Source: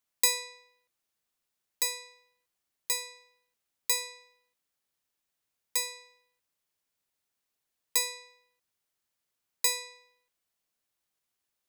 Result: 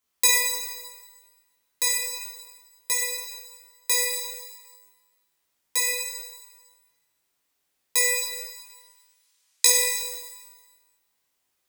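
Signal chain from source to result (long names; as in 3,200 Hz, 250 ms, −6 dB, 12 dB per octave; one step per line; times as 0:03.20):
0:08.15–0:09.65: meter weighting curve ITU-R 468
chorus effect 0.31 Hz, delay 16.5 ms, depth 7.4 ms
flutter between parallel walls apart 8.7 metres, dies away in 0.32 s
reverb with rising layers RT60 1.2 s, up +12 semitones, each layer −8 dB, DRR −2.5 dB
level +6.5 dB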